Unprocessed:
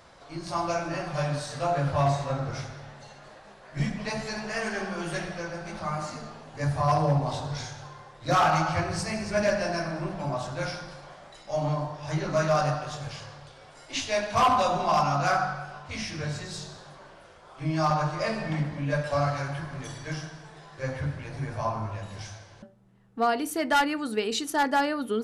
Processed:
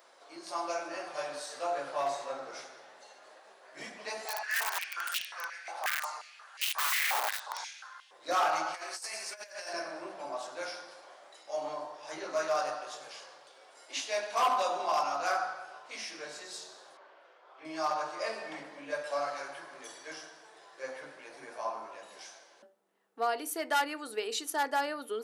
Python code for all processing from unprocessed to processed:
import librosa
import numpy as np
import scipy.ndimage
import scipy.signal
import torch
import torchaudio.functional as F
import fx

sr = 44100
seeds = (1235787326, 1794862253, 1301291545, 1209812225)

y = fx.chain(x, sr, fx.overflow_wrap(gain_db=24.0),
    fx.filter_held_highpass(hz=5.6, low_hz=780.0, high_hz=2900.0), at=(4.25, 8.11))
y = fx.chain(y, sr, fx.highpass(hz=1400.0, slope=6),
    fx.high_shelf(hz=7600.0, db=10.0),
    fx.over_compress(threshold_db=-36.0, ratio=-0.5), at=(8.74, 9.73))
y = fx.chain(y, sr, fx.lowpass(hz=3100.0, slope=12),
    fx.low_shelf(hz=220.0, db=-10.5), at=(16.97, 17.65))
y = scipy.signal.sosfilt(scipy.signal.butter(4, 350.0, 'highpass', fs=sr, output='sos'), y)
y = fx.high_shelf(y, sr, hz=11000.0, db=11.5)
y = F.gain(torch.from_numpy(y), -6.0).numpy()